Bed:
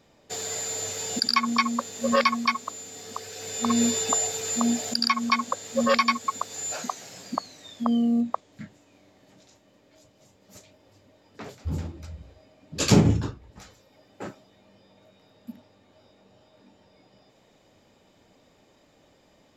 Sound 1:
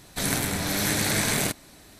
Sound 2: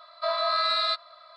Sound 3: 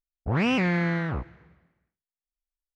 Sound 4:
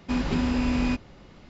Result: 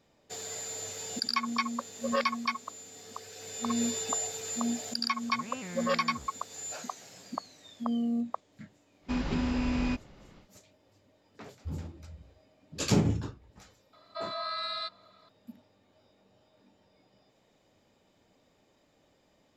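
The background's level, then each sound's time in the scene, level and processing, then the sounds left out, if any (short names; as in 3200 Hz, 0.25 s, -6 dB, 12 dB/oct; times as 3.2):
bed -7.5 dB
5.04 add 3 -18 dB + auto swell 0.25 s
9 add 4 -5 dB, fades 0.10 s
13.93 add 2 -10 dB
not used: 1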